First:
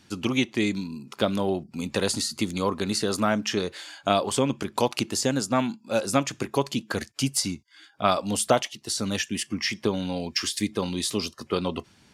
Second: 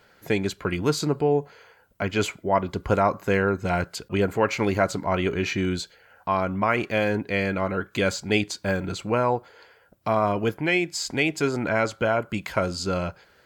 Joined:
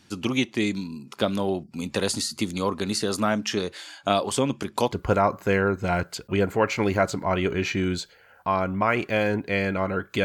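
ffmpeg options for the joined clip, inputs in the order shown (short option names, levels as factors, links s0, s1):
-filter_complex "[0:a]apad=whole_dur=10.24,atrim=end=10.24,atrim=end=4.922[s0];[1:a]atrim=start=2.728:end=8.05[s1];[s0][s1]acrossfade=d=0.004:c1=hsin:c2=hsin"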